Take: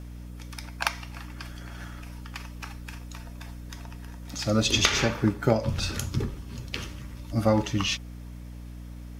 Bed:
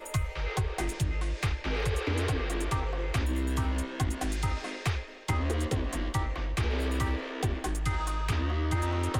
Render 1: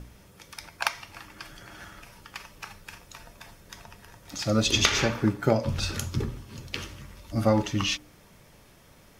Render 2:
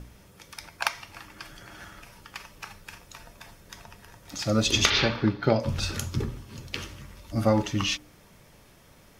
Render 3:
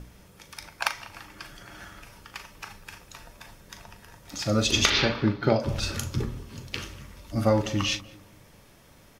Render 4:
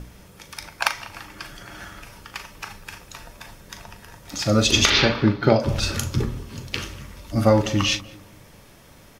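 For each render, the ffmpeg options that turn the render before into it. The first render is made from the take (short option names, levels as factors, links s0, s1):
-af "bandreject=f=60:t=h:w=4,bandreject=f=120:t=h:w=4,bandreject=f=180:t=h:w=4,bandreject=f=240:t=h:w=4,bandreject=f=300:t=h:w=4"
-filter_complex "[0:a]asettb=1/sr,asplit=3[s0][s1][s2];[s0]atrim=end=4.904[s3];[s1]atrim=start=4.9:end=5.6,asetpts=PTS-STARTPTS,afade=t=in:d=0.004:c=qsin,afade=t=out:st=0.696:d=0.004:c=qsin,highshelf=f=5900:t=q:w=3:g=-13[s4];[s2]atrim=start=5.596[s5];[s3][s4]acrossfade=d=0.004:c1=hsin:c2=qsin[s6];[s6][s5]acrossfade=d=0.004:c1=qsin:c2=hsin"
-filter_complex "[0:a]asplit=2[s0][s1];[s1]adelay=39,volume=0.266[s2];[s0][s2]amix=inputs=2:normalize=0,asplit=2[s3][s4];[s4]adelay=194,lowpass=f=1000:p=1,volume=0.158,asplit=2[s5][s6];[s6]adelay=194,lowpass=f=1000:p=1,volume=0.4,asplit=2[s7][s8];[s8]adelay=194,lowpass=f=1000:p=1,volume=0.4,asplit=2[s9][s10];[s10]adelay=194,lowpass=f=1000:p=1,volume=0.4[s11];[s3][s5][s7][s9][s11]amix=inputs=5:normalize=0"
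-af "volume=1.88,alimiter=limit=0.891:level=0:latency=1"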